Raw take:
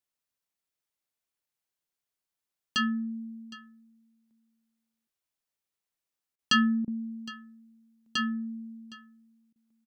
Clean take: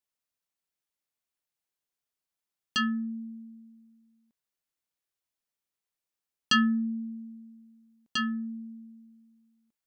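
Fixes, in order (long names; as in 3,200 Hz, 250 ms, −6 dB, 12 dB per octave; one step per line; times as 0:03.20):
repair the gap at 0:06.36/0:06.85/0:09.53, 26 ms
echo removal 763 ms −19 dB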